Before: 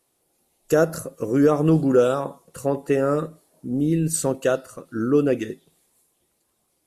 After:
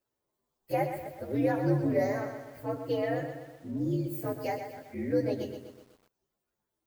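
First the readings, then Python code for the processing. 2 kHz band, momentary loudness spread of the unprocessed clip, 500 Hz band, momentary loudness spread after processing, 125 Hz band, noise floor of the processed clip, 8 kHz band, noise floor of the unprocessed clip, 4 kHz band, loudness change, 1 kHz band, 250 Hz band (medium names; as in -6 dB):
-7.5 dB, 16 LU, -10.5 dB, 12 LU, -8.0 dB, under -85 dBFS, -23.5 dB, -71 dBFS, -9.0 dB, -10.0 dB, -5.5 dB, -10.0 dB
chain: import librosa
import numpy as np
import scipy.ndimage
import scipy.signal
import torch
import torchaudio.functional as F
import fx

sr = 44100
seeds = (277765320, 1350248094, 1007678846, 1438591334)

y = fx.partial_stretch(x, sr, pct=122)
y = fx.echo_crushed(y, sr, ms=125, feedback_pct=55, bits=8, wet_db=-8.0)
y = y * librosa.db_to_amplitude(-8.5)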